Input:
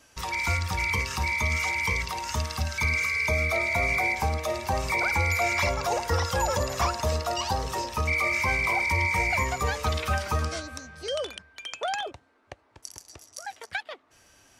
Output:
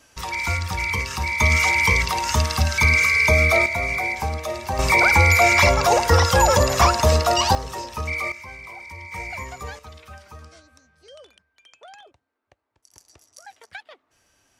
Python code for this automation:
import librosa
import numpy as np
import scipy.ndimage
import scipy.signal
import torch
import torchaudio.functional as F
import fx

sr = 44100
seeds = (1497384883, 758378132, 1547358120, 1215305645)

y = fx.gain(x, sr, db=fx.steps((0.0, 2.5), (1.4, 9.0), (3.66, 1.0), (4.79, 10.0), (7.55, -1.0), (8.32, -13.5), (9.12, -7.0), (9.79, -15.5), (12.92, -6.0)))